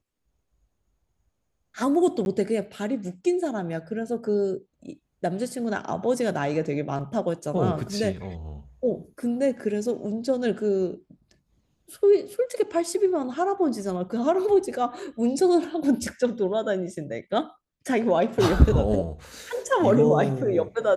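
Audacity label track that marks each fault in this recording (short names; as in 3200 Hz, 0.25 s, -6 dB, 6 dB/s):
2.250000	2.260000	gap 11 ms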